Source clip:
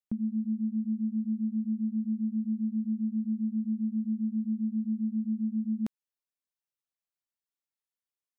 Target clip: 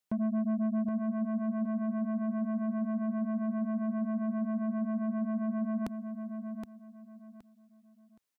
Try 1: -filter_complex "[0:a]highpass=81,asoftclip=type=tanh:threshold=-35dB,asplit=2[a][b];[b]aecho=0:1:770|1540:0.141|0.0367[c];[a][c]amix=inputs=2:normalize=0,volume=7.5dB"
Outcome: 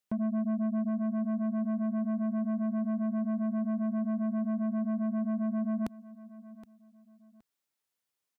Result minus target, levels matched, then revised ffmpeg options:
echo-to-direct -9.5 dB
-filter_complex "[0:a]highpass=81,asoftclip=type=tanh:threshold=-35dB,asplit=2[a][b];[b]aecho=0:1:770|1540|2310:0.422|0.11|0.0285[c];[a][c]amix=inputs=2:normalize=0,volume=7.5dB"

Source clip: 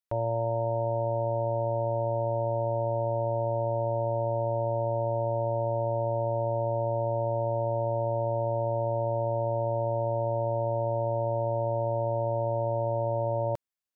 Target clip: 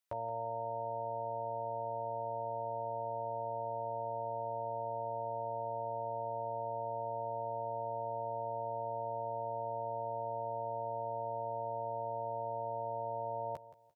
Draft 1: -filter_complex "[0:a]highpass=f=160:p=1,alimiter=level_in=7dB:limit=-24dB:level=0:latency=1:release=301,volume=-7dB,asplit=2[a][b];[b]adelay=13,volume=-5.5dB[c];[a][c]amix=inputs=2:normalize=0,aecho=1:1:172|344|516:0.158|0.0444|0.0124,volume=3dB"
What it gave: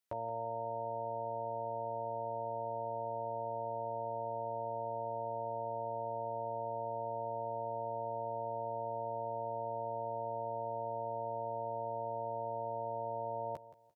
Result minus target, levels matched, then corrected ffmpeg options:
250 Hz band +3.5 dB
-filter_complex "[0:a]highpass=f=160:p=1,equalizer=f=280:w=1.3:g=-5.5,alimiter=level_in=7dB:limit=-24dB:level=0:latency=1:release=301,volume=-7dB,asplit=2[a][b];[b]adelay=13,volume=-5.5dB[c];[a][c]amix=inputs=2:normalize=0,aecho=1:1:172|344|516:0.158|0.0444|0.0124,volume=3dB"

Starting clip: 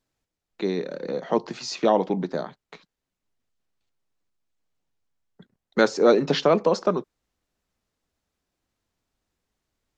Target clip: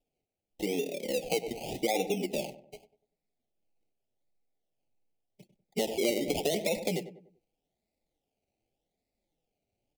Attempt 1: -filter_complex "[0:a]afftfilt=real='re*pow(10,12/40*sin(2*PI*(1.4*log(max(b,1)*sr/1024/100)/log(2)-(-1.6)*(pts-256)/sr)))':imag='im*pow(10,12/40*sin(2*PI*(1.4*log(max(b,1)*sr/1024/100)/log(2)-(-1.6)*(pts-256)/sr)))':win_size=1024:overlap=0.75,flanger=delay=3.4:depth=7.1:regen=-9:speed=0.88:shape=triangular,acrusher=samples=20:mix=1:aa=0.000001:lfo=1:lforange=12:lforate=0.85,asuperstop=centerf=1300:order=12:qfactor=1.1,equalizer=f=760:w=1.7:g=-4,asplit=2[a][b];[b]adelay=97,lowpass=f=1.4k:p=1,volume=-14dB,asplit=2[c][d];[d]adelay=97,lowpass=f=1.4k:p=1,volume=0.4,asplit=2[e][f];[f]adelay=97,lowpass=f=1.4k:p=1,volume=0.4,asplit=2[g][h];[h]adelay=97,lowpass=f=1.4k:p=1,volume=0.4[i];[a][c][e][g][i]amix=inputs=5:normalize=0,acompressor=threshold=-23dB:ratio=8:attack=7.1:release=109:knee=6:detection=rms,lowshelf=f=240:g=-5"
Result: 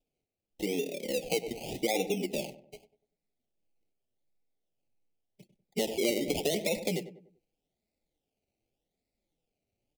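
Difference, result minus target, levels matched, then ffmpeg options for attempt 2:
1000 Hz band -2.5 dB
-filter_complex "[0:a]afftfilt=real='re*pow(10,12/40*sin(2*PI*(1.4*log(max(b,1)*sr/1024/100)/log(2)-(-1.6)*(pts-256)/sr)))':imag='im*pow(10,12/40*sin(2*PI*(1.4*log(max(b,1)*sr/1024/100)/log(2)-(-1.6)*(pts-256)/sr)))':win_size=1024:overlap=0.75,flanger=delay=3.4:depth=7.1:regen=-9:speed=0.88:shape=triangular,acrusher=samples=20:mix=1:aa=0.000001:lfo=1:lforange=12:lforate=0.85,asuperstop=centerf=1300:order=12:qfactor=1.1,asplit=2[a][b];[b]adelay=97,lowpass=f=1.4k:p=1,volume=-14dB,asplit=2[c][d];[d]adelay=97,lowpass=f=1.4k:p=1,volume=0.4,asplit=2[e][f];[f]adelay=97,lowpass=f=1.4k:p=1,volume=0.4,asplit=2[g][h];[h]adelay=97,lowpass=f=1.4k:p=1,volume=0.4[i];[a][c][e][g][i]amix=inputs=5:normalize=0,acompressor=threshold=-23dB:ratio=8:attack=7.1:release=109:knee=6:detection=rms,lowshelf=f=240:g=-5"

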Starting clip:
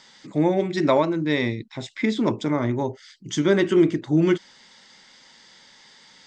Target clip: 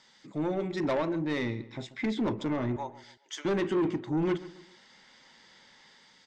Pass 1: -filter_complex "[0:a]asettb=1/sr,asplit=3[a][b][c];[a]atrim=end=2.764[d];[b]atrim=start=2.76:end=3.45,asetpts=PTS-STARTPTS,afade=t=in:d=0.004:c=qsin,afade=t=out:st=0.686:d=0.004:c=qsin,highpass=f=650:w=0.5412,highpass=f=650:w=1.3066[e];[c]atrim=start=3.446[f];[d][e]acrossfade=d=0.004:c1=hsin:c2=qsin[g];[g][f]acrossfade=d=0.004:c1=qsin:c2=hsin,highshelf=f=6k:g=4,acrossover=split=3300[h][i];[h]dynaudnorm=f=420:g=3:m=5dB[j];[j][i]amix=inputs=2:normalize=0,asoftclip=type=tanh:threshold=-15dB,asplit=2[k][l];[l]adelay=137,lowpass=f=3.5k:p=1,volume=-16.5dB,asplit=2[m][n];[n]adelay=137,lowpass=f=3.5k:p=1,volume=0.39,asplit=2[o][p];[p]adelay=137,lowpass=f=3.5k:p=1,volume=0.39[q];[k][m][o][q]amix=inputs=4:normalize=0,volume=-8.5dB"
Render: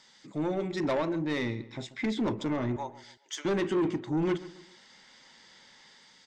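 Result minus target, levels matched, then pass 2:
8000 Hz band +3.5 dB
-filter_complex "[0:a]asettb=1/sr,asplit=3[a][b][c];[a]atrim=end=2.764[d];[b]atrim=start=2.76:end=3.45,asetpts=PTS-STARTPTS,afade=t=in:d=0.004:c=qsin,afade=t=out:st=0.686:d=0.004:c=qsin,highpass=f=650:w=0.5412,highpass=f=650:w=1.3066[e];[c]atrim=start=3.446[f];[d][e]acrossfade=d=0.004:c1=hsin:c2=qsin[g];[g][f]acrossfade=d=0.004:c1=qsin:c2=hsin,highshelf=f=6k:g=-3,acrossover=split=3300[h][i];[h]dynaudnorm=f=420:g=3:m=5dB[j];[j][i]amix=inputs=2:normalize=0,asoftclip=type=tanh:threshold=-15dB,asplit=2[k][l];[l]adelay=137,lowpass=f=3.5k:p=1,volume=-16.5dB,asplit=2[m][n];[n]adelay=137,lowpass=f=3.5k:p=1,volume=0.39,asplit=2[o][p];[p]adelay=137,lowpass=f=3.5k:p=1,volume=0.39[q];[k][m][o][q]amix=inputs=4:normalize=0,volume=-8.5dB"

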